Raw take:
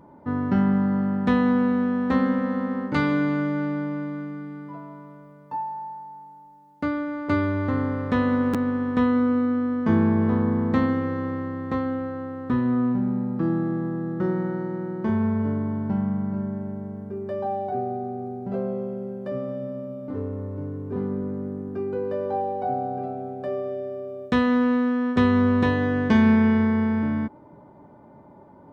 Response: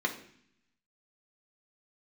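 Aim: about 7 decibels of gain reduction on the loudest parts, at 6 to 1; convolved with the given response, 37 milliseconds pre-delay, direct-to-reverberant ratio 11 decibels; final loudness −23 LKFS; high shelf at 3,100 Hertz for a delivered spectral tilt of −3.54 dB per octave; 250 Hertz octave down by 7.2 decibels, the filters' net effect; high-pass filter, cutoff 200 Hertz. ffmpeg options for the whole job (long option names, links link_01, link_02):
-filter_complex "[0:a]highpass=200,equalizer=frequency=250:width_type=o:gain=-6,highshelf=frequency=3100:gain=-5.5,acompressor=threshold=-28dB:ratio=6,asplit=2[link_01][link_02];[1:a]atrim=start_sample=2205,adelay=37[link_03];[link_02][link_03]afir=irnorm=-1:irlink=0,volume=-19dB[link_04];[link_01][link_04]amix=inputs=2:normalize=0,volume=9.5dB"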